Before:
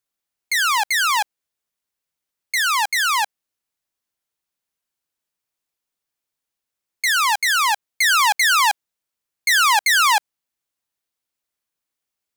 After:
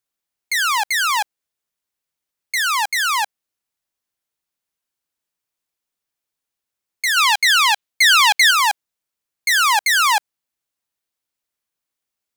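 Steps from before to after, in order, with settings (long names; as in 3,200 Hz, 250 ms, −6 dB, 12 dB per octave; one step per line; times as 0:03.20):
0:07.16–0:08.51: dynamic equaliser 3,200 Hz, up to +8 dB, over −32 dBFS, Q 0.98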